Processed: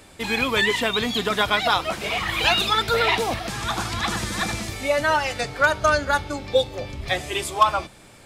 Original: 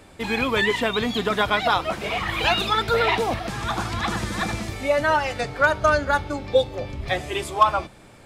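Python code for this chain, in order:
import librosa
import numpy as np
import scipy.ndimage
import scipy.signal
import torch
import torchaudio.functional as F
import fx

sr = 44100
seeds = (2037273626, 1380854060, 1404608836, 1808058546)

y = fx.high_shelf(x, sr, hz=2600.0, db=8.0)
y = y * librosa.db_to_amplitude(-1.5)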